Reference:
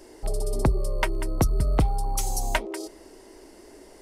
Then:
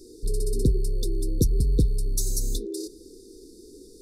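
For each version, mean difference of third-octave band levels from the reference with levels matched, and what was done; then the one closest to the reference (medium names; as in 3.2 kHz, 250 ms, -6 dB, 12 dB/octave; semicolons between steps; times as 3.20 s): 10.0 dB: in parallel at -11.5 dB: hard clipper -24.5 dBFS, distortion -9 dB; on the sum: brick-wall FIR band-stop 510–3500 Hz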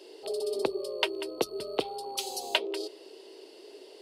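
7.0 dB: resonant high-pass 420 Hz, resonance Q 3.8; high-order bell 3.5 kHz +15 dB 1.1 oct; trim -8 dB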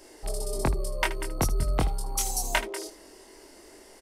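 4.5 dB: tilt shelf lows -4 dB, about 760 Hz; on a send: early reflections 23 ms -3.5 dB, 78 ms -14 dB; on the sum: trim -3 dB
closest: third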